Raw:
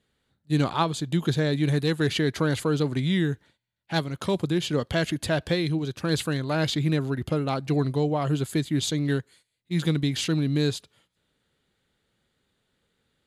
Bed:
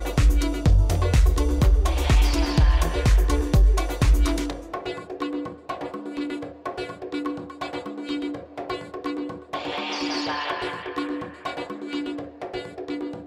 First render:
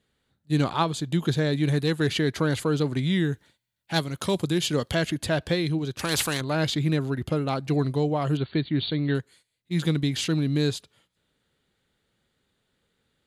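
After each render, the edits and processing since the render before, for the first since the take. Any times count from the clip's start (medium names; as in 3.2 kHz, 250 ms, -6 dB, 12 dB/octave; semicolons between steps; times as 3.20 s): 3.32–4.94 s: treble shelf 5.6 kHz -> 3.7 kHz +8.5 dB; 5.99–6.41 s: spectrum-flattening compressor 2:1; 8.37–9.15 s: brick-wall FIR low-pass 4.6 kHz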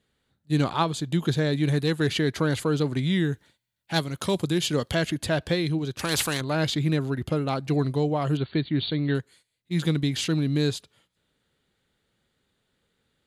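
no audible change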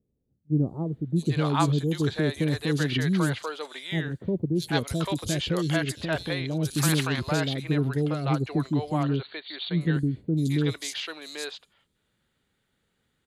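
three bands offset in time lows, highs, mids 660/790 ms, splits 520/4400 Hz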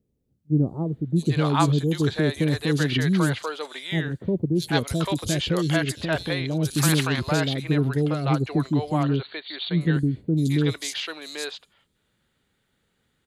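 trim +3 dB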